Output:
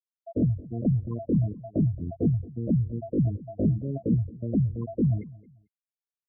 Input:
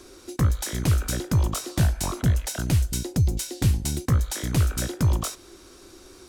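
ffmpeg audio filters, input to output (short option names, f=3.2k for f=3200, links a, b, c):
-filter_complex "[0:a]highshelf=f=2.2k:g=-4,asetrate=83250,aresample=44100,atempo=0.529732,bandreject=f=840:w=12,afftfilt=real='re*gte(hypot(re,im),0.126)':imag='im*gte(hypot(re,im),0.126)':win_size=1024:overlap=0.75,asplit=2[a][b];[b]aecho=0:1:222|444:0.0891|0.0241[c];[a][c]amix=inputs=2:normalize=0,volume=-2.5dB"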